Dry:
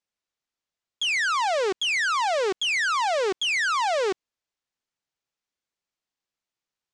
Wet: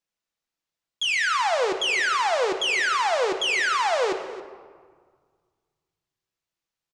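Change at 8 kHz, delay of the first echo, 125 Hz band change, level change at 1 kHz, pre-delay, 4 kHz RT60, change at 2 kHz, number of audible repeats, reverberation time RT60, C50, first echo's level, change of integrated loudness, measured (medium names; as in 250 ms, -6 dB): +0.5 dB, 273 ms, no reading, +1.0 dB, 6 ms, 0.95 s, +1.0 dB, 1, 1.7 s, 8.5 dB, -18.0 dB, +1.0 dB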